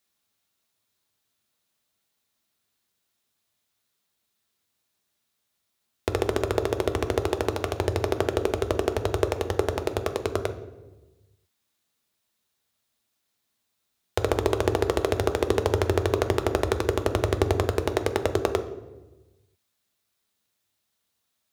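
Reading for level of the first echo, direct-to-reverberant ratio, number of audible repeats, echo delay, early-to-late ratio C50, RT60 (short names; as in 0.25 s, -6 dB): none, 7.0 dB, none, none, 12.0 dB, 1.1 s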